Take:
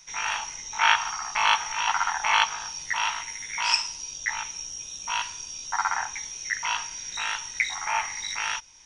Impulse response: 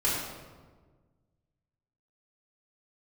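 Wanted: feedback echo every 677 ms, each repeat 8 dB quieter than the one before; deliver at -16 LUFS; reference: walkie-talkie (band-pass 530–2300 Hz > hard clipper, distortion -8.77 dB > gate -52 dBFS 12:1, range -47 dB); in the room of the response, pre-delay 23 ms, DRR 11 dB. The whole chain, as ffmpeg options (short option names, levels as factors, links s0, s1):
-filter_complex "[0:a]aecho=1:1:677|1354|2031|2708|3385:0.398|0.159|0.0637|0.0255|0.0102,asplit=2[s0][s1];[1:a]atrim=start_sample=2205,adelay=23[s2];[s1][s2]afir=irnorm=-1:irlink=0,volume=0.0841[s3];[s0][s3]amix=inputs=2:normalize=0,highpass=530,lowpass=2300,asoftclip=type=hard:threshold=0.0708,agate=range=0.00447:threshold=0.00251:ratio=12,volume=5.31"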